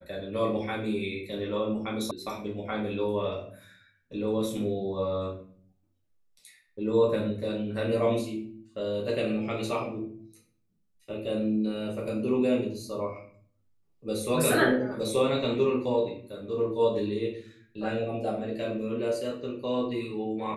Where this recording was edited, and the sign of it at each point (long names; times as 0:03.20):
0:02.11: cut off before it has died away